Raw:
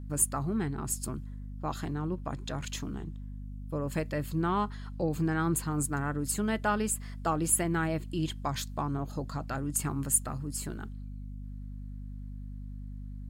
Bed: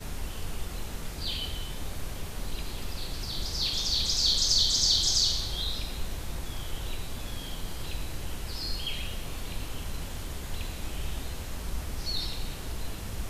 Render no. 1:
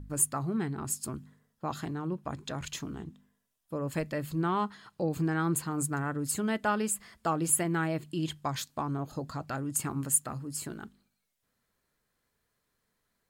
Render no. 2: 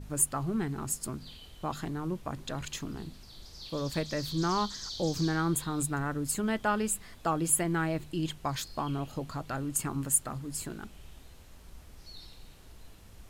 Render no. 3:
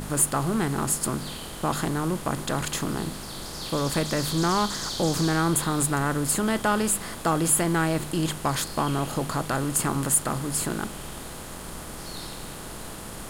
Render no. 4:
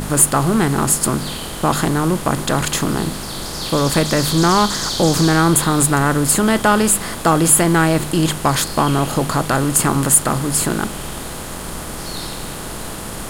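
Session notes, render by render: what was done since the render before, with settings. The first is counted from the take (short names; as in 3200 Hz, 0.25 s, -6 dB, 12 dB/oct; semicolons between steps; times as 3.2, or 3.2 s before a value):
de-hum 50 Hz, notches 5
add bed -16.5 dB
per-bin compression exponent 0.6; sample leveller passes 1
gain +9.5 dB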